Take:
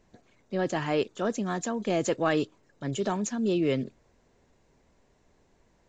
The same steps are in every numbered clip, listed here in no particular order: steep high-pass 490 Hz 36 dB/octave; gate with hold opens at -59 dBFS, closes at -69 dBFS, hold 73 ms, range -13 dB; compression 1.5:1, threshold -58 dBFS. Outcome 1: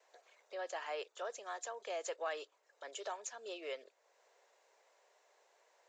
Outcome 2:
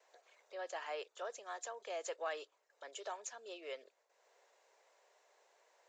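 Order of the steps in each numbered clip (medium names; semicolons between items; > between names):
gate with hold > steep high-pass > compression; compression > gate with hold > steep high-pass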